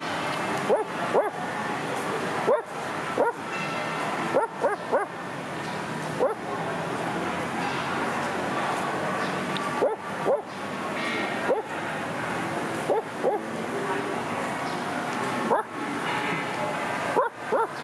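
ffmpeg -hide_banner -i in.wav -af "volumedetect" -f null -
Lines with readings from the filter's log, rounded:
mean_volume: -27.8 dB
max_volume: -9.5 dB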